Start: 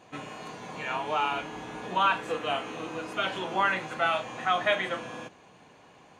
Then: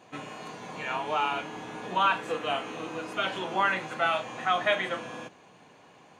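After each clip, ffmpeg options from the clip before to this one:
ffmpeg -i in.wav -af "highpass=97" out.wav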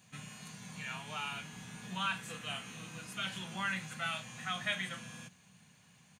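ffmpeg -i in.wav -af "firequalizer=gain_entry='entry(200,0);entry(300,-21);entry(930,-17);entry(1600,-8);entry(9200,7)':delay=0.05:min_phase=1" out.wav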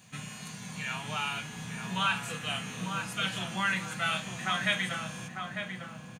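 ffmpeg -i in.wav -filter_complex "[0:a]asplit=2[link_01][link_02];[link_02]adelay=899,lowpass=frequency=1300:poles=1,volume=-3.5dB,asplit=2[link_03][link_04];[link_04]adelay=899,lowpass=frequency=1300:poles=1,volume=0.46,asplit=2[link_05][link_06];[link_06]adelay=899,lowpass=frequency=1300:poles=1,volume=0.46,asplit=2[link_07][link_08];[link_08]adelay=899,lowpass=frequency=1300:poles=1,volume=0.46,asplit=2[link_09][link_10];[link_10]adelay=899,lowpass=frequency=1300:poles=1,volume=0.46,asplit=2[link_11][link_12];[link_12]adelay=899,lowpass=frequency=1300:poles=1,volume=0.46[link_13];[link_01][link_03][link_05][link_07][link_09][link_11][link_13]amix=inputs=7:normalize=0,volume=6.5dB" out.wav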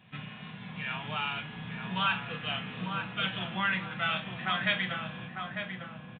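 ffmpeg -i in.wav -ar 8000 -c:a adpcm_g726 -b:a 40k out.wav

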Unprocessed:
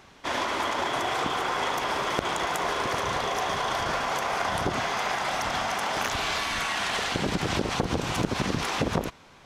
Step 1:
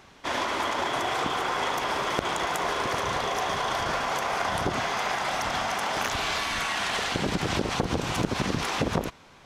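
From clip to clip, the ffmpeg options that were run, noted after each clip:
ffmpeg -i in.wav -af anull out.wav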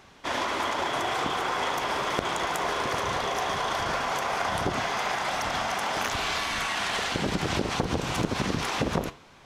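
ffmpeg -i in.wav -af "flanger=delay=9.7:depth=5.8:regen=-82:speed=1.3:shape=triangular,volume=4dB" out.wav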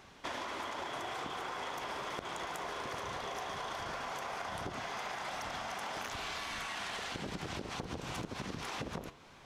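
ffmpeg -i in.wav -af "acompressor=threshold=-34dB:ratio=6,volume=-3.5dB" out.wav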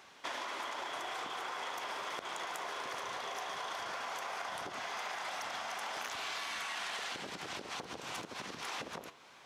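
ffmpeg -i in.wav -af "highpass=frequency=650:poles=1,volume=1.5dB" out.wav

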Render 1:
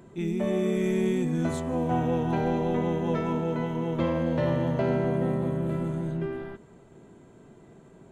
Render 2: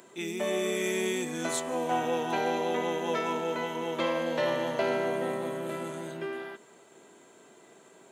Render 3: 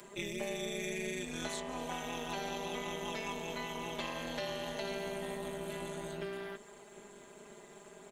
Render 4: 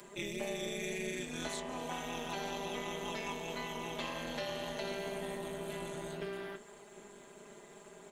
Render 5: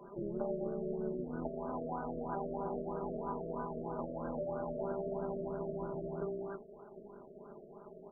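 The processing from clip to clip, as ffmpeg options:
ffmpeg -i in.wav -af "highpass=390,highshelf=frequency=2100:gain=11.5" out.wav
ffmpeg -i in.wav -filter_complex "[0:a]aecho=1:1:4.9:0.85,acrossover=split=200|2600|5700[link_01][link_02][link_03][link_04];[link_01]acompressor=threshold=-49dB:ratio=4[link_05];[link_02]acompressor=threshold=-40dB:ratio=4[link_06];[link_03]acompressor=threshold=-43dB:ratio=4[link_07];[link_04]acompressor=threshold=-53dB:ratio=4[link_08];[link_05][link_06][link_07][link_08]amix=inputs=4:normalize=0,tremolo=f=210:d=0.75,volume=2dB" out.wav
ffmpeg -i in.wav -af "flanger=delay=5.1:depth=9.7:regen=-71:speed=1.9:shape=sinusoidal,volume=4dB" out.wav
ffmpeg -i in.wav -af "afftfilt=real='re*lt(b*sr/1024,660*pow(1600/660,0.5+0.5*sin(2*PI*3.1*pts/sr)))':imag='im*lt(b*sr/1024,660*pow(1600/660,0.5+0.5*sin(2*PI*3.1*pts/sr)))':win_size=1024:overlap=0.75,volume=2.5dB" out.wav

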